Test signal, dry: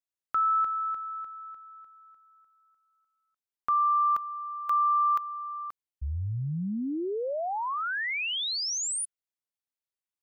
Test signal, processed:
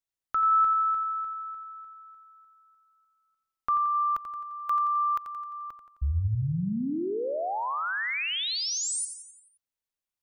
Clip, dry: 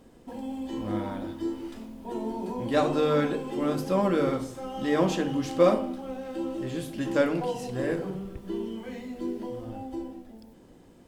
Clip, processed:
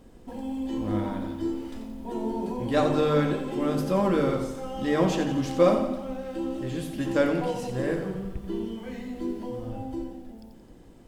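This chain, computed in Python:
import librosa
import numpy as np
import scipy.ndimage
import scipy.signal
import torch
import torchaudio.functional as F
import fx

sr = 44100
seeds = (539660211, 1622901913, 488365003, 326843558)

p1 = fx.low_shelf(x, sr, hz=80.0, db=10.0)
y = p1 + fx.echo_feedback(p1, sr, ms=87, feedback_pct=55, wet_db=-9.5, dry=0)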